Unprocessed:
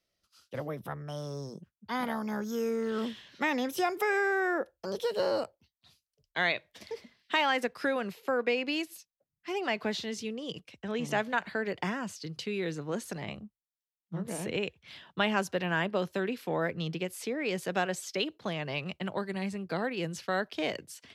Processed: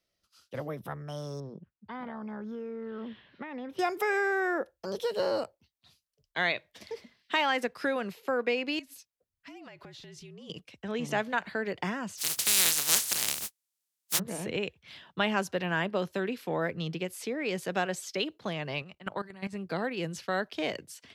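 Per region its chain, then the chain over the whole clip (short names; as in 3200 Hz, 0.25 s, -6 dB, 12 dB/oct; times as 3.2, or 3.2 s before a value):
1.4–3.79 compressor 4:1, threshold -35 dBFS + air absorption 410 m
8.79–10.5 compressor 12:1, threshold -44 dBFS + frequency shift -55 Hz
12.17–14.18 spectral contrast lowered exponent 0.17 + HPF 47 Hz + bell 9900 Hz +13 dB 2.9 oct
18.82–19.53 dynamic EQ 1300 Hz, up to +6 dB, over -50 dBFS, Q 1.1 + level quantiser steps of 16 dB
whole clip: dry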